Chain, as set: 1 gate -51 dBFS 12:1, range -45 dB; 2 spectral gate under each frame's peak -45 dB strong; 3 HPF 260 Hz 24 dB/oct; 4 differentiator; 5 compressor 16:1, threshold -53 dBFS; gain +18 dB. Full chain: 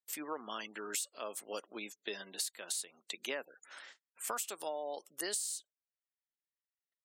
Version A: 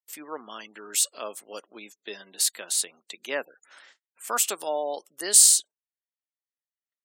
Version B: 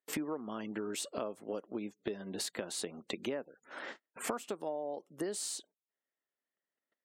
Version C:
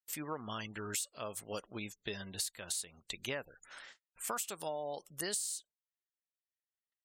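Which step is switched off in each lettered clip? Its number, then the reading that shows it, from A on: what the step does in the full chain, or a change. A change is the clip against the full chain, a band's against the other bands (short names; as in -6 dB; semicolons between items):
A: 5, mean gain reduction 7.0 dB; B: 4, 250 Hz band +11.0 dB; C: 3, 250 Hz band +3.0 dB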